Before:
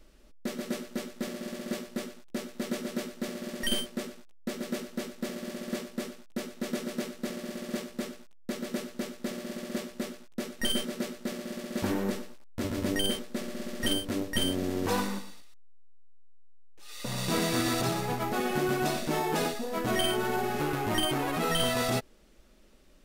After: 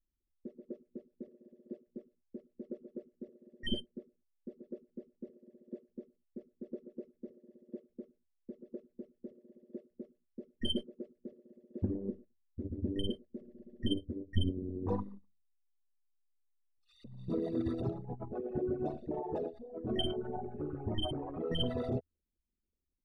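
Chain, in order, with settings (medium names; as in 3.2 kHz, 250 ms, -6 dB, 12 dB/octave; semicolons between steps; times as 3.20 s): resonances exaggerated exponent 3; peaking EQ 81 Hz +14.5 dB 0.38 oct; upward expansion 2.5:1, over -43 dBFS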